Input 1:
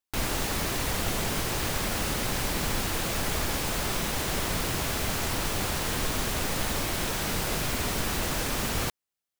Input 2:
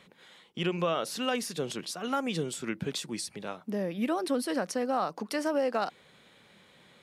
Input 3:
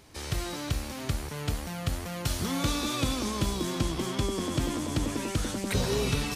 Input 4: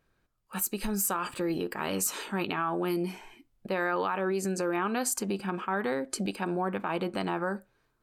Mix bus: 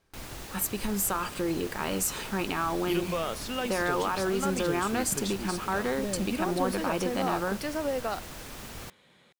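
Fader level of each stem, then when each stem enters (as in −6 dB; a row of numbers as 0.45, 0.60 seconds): −13.0, −2.5, −19.0, +0.5 decibels; 0.00, 2.30, 0.00, 0.00 seconds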